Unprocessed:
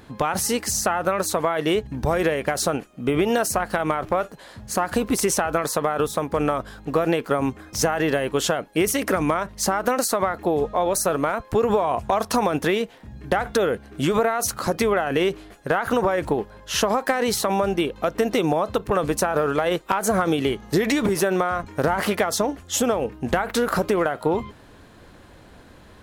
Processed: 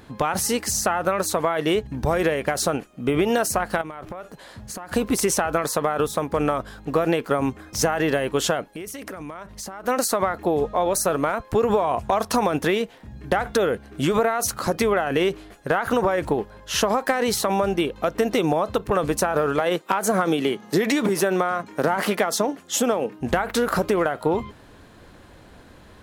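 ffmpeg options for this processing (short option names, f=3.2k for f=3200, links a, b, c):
-filter_complex "[0:a]asettb=1/sr,asplit=3[a][b][c];[a]atrim=end=3.814[d];[b]atrim=start=3.81:end=4.91,asetpts=PTS-STARTPTS,afade=t=in:d=0.004:c=qsin,afade=t=out:st=1.096:d=0.004:c=qsin,acompressor=threshold=-30dB:ratio=12:attack=3.2:release=140:knee=1:detection=peak[e];[c]atrim=start=4.906[f];[d][e]acrossfade=d=0.004:c1=hsin:c2=qsin[g];[g][f]acrossfade=d=0.004:c1=qsin:c2=hsin,asplit=3[h][i][j];[h]afade=t=out:st=8.67:d=0.02[k];[i]acompressor=threshold=-32dB:ratio=6:attack=3.2:release=140:knee=1:detection=peak,afade=t=in:st=8.67:d=0.02,afade=t=out:st=9.87:d=0.02[l];[j]afade=t=in:st=9.87:d=0.02[m];[k][l][m]amix=inputs=3:normalize=0,asettb=1/sr,asplit=3[n][o][p];[n]atrim=end=19.604[q];[o]atrim=start=19.6:end=23.21,asetpts=PTS-STARTPTS,afade=t=in:d=0.004:c=qsin,afade=t=out:st=3.606:d=0.004:c=qsin,highpass=f=150:w=0.5412,highpass=f=150:w=1.3066[r];[p]atrim=start=23.206[s];[q][r]acrossfade=d=0.004:c1=hsin:c2=qsin[t];[t][s]acrossfade=d=0.004:c1=qsin:c2=hsin"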